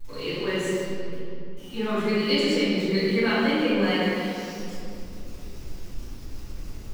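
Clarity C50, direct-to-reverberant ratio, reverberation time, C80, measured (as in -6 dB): -4.5 dB, -15.5 dB, 2.9 s, -1.5 dB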